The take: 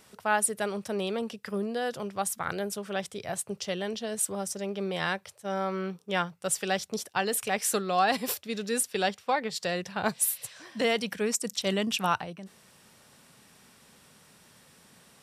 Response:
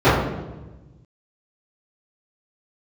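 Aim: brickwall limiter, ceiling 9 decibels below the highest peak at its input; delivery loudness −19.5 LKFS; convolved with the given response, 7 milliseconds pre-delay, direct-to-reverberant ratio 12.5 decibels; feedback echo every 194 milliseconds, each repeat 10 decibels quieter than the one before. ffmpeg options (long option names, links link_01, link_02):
-filter_complex "[0:a]alimiter=limit=-20.5dB:level=0:latency=1,aecho=1:1:194|388|582|776:0.316|0.101|0.0324|0.0104,asplit=2[link_01][link_02];[1:a]atrim=start_sample=2205,adelay=7[link_03];[link_02][link_03]afir=irnorm=-1:irlink=0,volume=-39.5dB[link_04];[link_01][link_04]amix=inputs=2:normalize=0,volume=12.5dB"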